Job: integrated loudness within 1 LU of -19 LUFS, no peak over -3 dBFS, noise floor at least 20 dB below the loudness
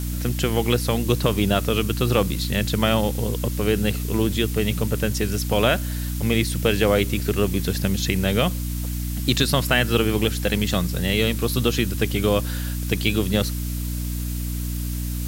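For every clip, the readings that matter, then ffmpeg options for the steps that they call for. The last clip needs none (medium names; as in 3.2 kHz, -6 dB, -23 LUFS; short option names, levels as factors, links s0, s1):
hum 60 Hz; highest harmonic 300 Hz; hum level -24 dBFS; noise floor -27 dBFS; noise floor target -43 dBFS; loudness -22.5 LUFS; peak level -4.5 dBFS; loudness target -19.0 LUFS
-> -af "bandreject=f=60:t=h:w=4,bandreject=f=120:t=h:w=4,bandreject=f=180:t=h:w=4,bandreject=f=240:t=h:w=4,bandreject=f=300:t=h:w=4"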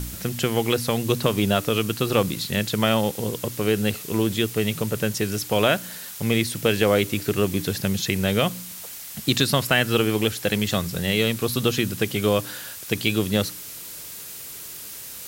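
hum not found; noise floor -38 dBFS; noise floor target -43 dBFS
-> -af "afftdn=nr=6:nf=-38"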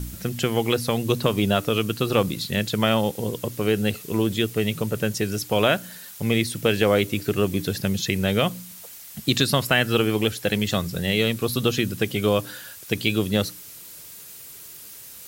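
noise floor -42 dBFS; noise floor target -44 dBFS
-> -af "afftdn=nr=6:nf=-42"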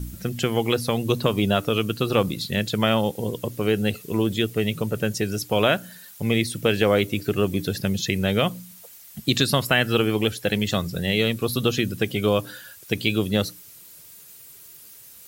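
noise floor -46 dBFS; loudness -23.5 LUFS; peak level -4.5 dBFS; loudness target -19.0 LUFS
-> -af "volume=1.68,alimiter=limit=0.708:level=0:latency=1"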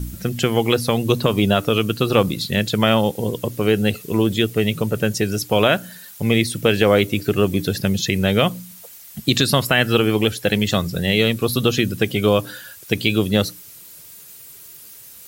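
loudness -19.0 LUFS; peak level -3.0 dBFS; noise floor -42 dBFS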